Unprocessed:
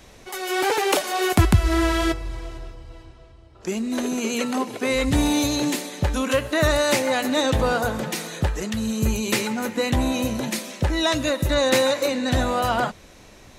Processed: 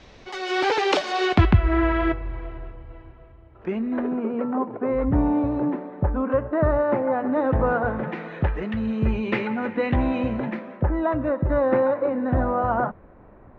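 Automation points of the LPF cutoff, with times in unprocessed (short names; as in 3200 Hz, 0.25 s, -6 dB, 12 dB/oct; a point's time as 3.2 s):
LPF 24 dB/oct
1.22 s 5100 Hz
1.65 s 2300 Hz
3.69 s 2300 Hz
4.32 s 1300 Hz
7.18 s 1300 Hz
8.48 s 2400 Hz
10.26 s 2400 Hz
10.93 s 1400 Hz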